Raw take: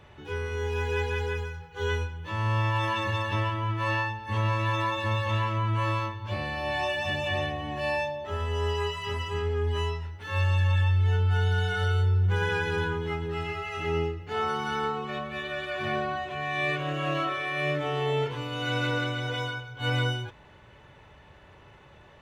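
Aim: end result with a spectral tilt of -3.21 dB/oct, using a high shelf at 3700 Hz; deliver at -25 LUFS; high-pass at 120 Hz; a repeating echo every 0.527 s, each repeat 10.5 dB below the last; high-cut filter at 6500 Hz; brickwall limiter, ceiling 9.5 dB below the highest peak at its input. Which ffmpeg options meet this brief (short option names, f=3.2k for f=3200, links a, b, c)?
-af "highpass=120,lowpass=6.5k,highshelf=f=3.7k:g=5,alimiter=level_in=2.5dB:limit=-24dB:level=0:latency=1,volume=-2.5dB,aecho=1:1:527|1054|1581:0.299|0.0896|0.0269,volume=9dB"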